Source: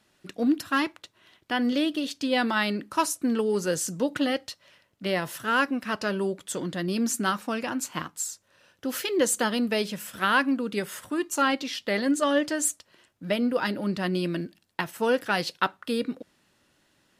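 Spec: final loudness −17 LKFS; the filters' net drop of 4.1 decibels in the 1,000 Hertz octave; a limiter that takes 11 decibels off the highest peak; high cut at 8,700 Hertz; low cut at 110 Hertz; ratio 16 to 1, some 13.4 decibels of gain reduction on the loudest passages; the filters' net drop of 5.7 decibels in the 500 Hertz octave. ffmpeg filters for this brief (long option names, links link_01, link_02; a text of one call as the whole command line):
ffmpeg -i in.wav -af "highpass=110,lowpass=8700,equalizer=frequency=500:width_type=o:gain=-6,equalizer=frequency=1000:width_type=o:gain=-4,acompressor=threshold=-34dB:ratio=16,volume=23dB,alimiter=limit=-7dB:level=0:latency=1" out.wav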